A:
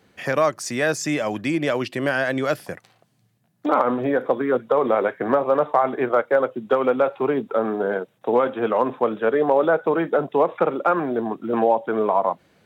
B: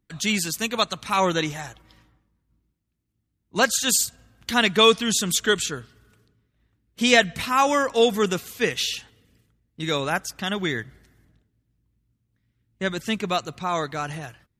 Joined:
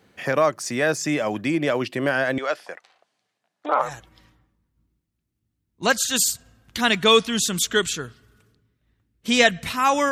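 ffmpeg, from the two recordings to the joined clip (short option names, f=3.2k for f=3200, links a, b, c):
-filter_complex "[0:a]asettb=1/sr,asplit=3[a][b][c];[a]atrim=end=2.384[d];[b]atrim=start=2.38:end=3.92,asetpts=PTS-STARTPTS,afade=t=in:d=0.004:c=qsin,afade=t=out:st=1.536:d=0.004:c=qsin,highpass=570,lowpass=6.6k[e];[c]atrim=start=3.916[f];[d][e]acrossfade=d=0.004:c1=hsin:c2=qsin[g];[g][f]acrossfade=d=0.004:c1=qsin:c2=hsin,apad=whole_dur=10.11,atrim=end=10.11,atrim=end=3.92,asetpts=PTS-STARTPTS[h];[1:a]atrim=start=1.51:end=7.84,asetpts=PTS-STARTPTS[i];[h][i]acrossfade=d=0.14:c1=tri:c2=tri"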